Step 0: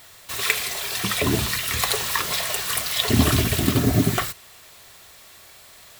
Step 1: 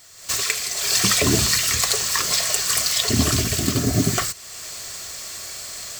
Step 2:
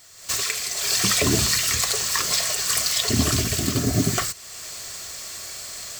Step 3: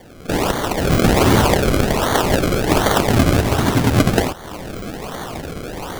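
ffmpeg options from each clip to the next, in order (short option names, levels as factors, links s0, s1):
-af "dynaudnorm=f=150:g=3:m=5.62,superequalizer=9b=0.631:14b=2.51:15b=3.16,volume=0.531"
-af "alimiter=level_in=1.88:limit=0.891:release=50:level=0:latency=1,volume=0.447"
-af "acrusher=samples=33:mix=1:aa=0.000001:lfo=1:lforange=33:lforate=1.3,volume=2.24"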